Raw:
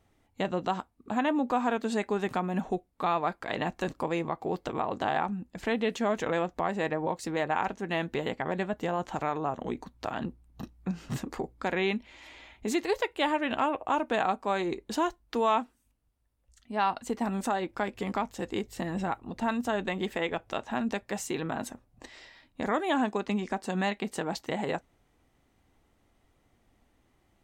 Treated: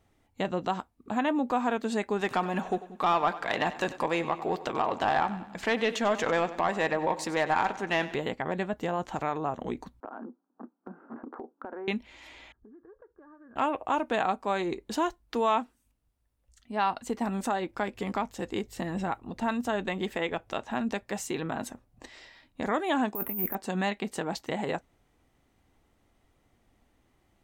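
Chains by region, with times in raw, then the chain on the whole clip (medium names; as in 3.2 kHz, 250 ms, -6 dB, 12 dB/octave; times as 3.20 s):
2.21–8.15 s: overdrive pedal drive 11 dB, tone 7.3 kHz, clips at -14 dBFS + two-band feedback delay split 350 Hz, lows 181 ms, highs 95 ms, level -15 dB
10.00–11.88 s: Chebyshev band-pass 230–1500 Hz, order 4 + compression 5:1, threshold -36 dBFS
12.52–13.56 s: rippled Chebyshev low-pass 1.7 kHz, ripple 9 dB + peaking EQ 670 Hz -14 dB 2.6 oct + compression 10:1, threshold -49 dBFS
23.15–23.55 s: compressor with a negative ratio -36 dBFS + careless resampling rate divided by 3×, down filtered, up zero stuff + Butterworth band-stop 4.8 kHz, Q 0.66
whole clip: none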